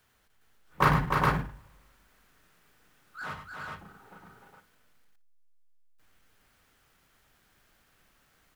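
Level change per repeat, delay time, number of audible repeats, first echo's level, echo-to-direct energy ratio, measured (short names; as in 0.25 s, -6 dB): no steady repeat, 95 ms, 4, -8.5 dB, 0.0 dB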